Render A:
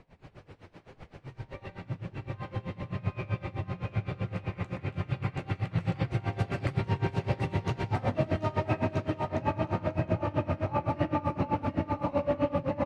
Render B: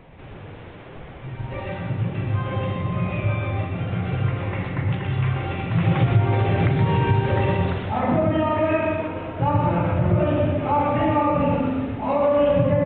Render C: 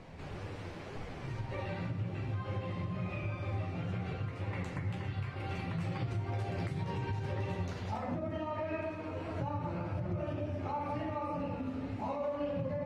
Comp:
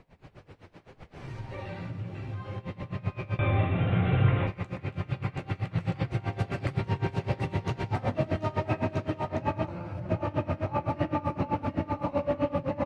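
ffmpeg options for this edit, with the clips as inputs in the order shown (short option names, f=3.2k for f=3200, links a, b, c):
-filter_complex "[2:a]asplit=2[a][b];[0:a]asplit=4[c][d][e][f];[c]atrim=end=1.162[g];[a]atrim=start=1.158:end=2.582[h];[d]atrim=start=2.578:end=3.392[i];[1:a]atrim=start=3.388:end=4.472[j];[e]atrim=start=4.468:end=9.682[k];[b]atrim=start=9.678:end=10.092[l];[f]atrim=start=10.088[m];[g][h]acrossfade=d=0.004:c1=hsin:c2=hsin[n];[n][i]acrossfade=d=0.004:c1=hsin:c2=hsin[o];[o][j]acrossfade=d=0.004:c1=hsin:c2=hsin[p];[p][k]acrossfade=d=0.004:c1=hsin:c2=hsin[q];[q][l]acrossfade=d=0.004:c1=hsin:c2=hsin[r];[r][m]acrossfade=d=0.004:c1=hsin:c2=hsin"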